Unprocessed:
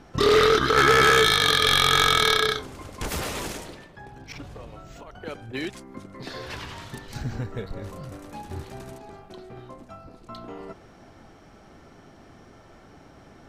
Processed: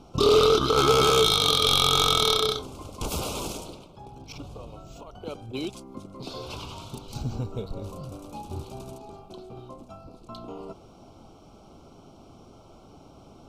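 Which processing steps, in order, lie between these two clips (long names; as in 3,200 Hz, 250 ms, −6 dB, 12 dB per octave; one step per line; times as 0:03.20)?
Butterworth band-reject 1,800 Hz, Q 1.4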